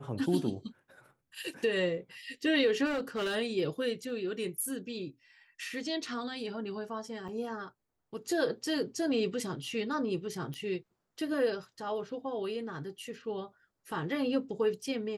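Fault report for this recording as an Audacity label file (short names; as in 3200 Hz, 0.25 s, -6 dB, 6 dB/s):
2.850000	3.360000	clipped -29.5 dBFS
7.280000	7.280000	gap 4.6 ms
10.540000	10.540000	pop -27 dBFS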